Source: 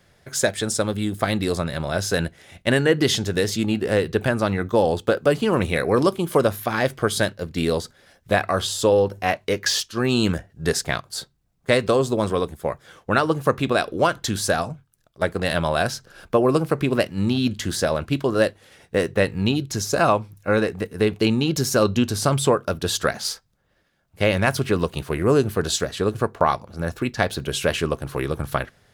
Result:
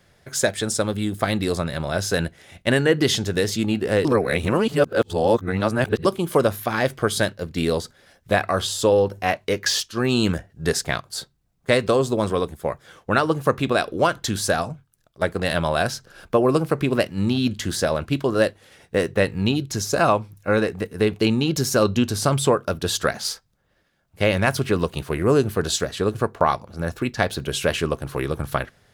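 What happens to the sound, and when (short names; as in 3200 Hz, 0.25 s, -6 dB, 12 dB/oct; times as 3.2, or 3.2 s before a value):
4.05–6.05 reverse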